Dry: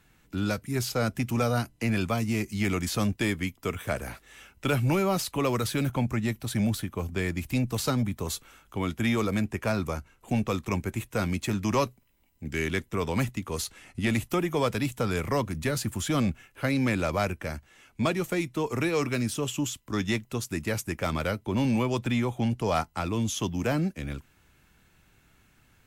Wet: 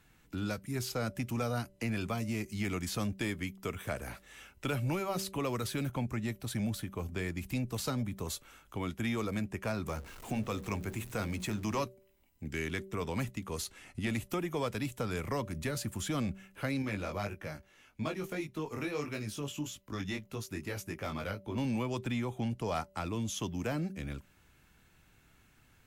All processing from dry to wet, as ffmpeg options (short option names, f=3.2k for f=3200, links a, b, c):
-filter_complex "[0:a]asettb=1/sr,asplit=3[a][b][c];[a]atrim=end=9.864[d];[b]atrim=start=9.86:end=11.84,asetpts=PTS-STARTPTS,afade=t=in:d=0.004:c=qsin,afade=t=out:st=1.976:d=0.004:c=qsin,aeval=exprs='val(0)+0.5*0.00841*sgn(val(0))':c=same,bandreject=f=60:t=h:w=6,bandreject=f=120:t=h:w=6,bandreject=f=180:t=h:w=6,bandreject=f=240:t=h:w=6,bandreject=f=300:t=h:w=6,bandreject=f=360:t=h:w=6,bandreject=f=420:t=h:w=6,bandreject=f=480:t=h:w=6,bandreject=f=540:t=h:w=6,bandreject=f=600:t=h:w=6[e];[c]atrim=start=11.836[f];[d][e]acrossfade=d=0.004:c1=hsin:c2=qsin[g];[g][f]acrossfade=d=0.004:c1=qsin:c2=hsin,asettb=1/sr,asplit=3[h][i][j];[h]atrim=end=16.824[k];[i]atrim=start=16.82:end=21.58,asetpts=PTS-STARTPTS,afade=t=in:d=0.004:c=qsin,afade=t=out:st=4.756:d=0.004:c=qsin,equalizer=f=8.1k:t=o:w=0.26:g=-7,flanger=delay=18.5:depth=2.8:speed=1.7[l];[j]atrim=start=21.576[m];[k][l]acrossfade=d=0.004:c1=hsin:c2=qsin[n];[n][m]acrossfade=d=0.004:c1=qsin:c2=hsin,bandreject=f=192.9:t=h:w=4,bandreject=f=385.8:t=h:w=4,bandreject=f=578.7:t=h:w=4,acompressor=threshold=-37dB:ratio=1.5,volume=-2.5dB"